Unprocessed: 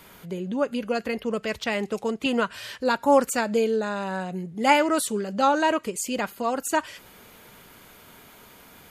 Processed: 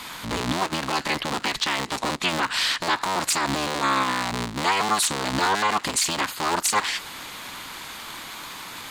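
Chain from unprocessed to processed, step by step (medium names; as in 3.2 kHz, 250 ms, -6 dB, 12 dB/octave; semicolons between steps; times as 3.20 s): cycle switcher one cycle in 3, inverted; graphic EQ 250/500/1000/2000/4000/8000 Hz +5/-3/+11/+6/+12/+9 dB; peak limiter -15.5 dBFS, peak gain reduction 22.5 dB; trim +3.5 dB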